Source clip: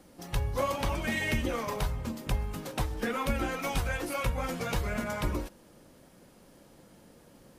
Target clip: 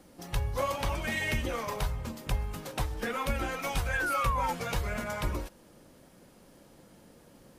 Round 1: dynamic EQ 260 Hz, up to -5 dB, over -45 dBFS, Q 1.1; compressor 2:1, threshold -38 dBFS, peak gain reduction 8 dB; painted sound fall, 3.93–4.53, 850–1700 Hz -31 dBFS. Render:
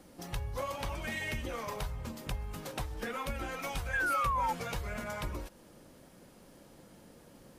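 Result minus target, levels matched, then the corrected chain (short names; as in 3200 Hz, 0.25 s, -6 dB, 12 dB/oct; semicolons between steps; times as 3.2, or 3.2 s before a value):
compressor: peak gain reduction +8 dB
dynamic EQ 260 Hz, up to -5 dB, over -45 dBFS, Q 1.1; painted sound fall, 3.93–4.53, 850–1700 Hz -31 dBFS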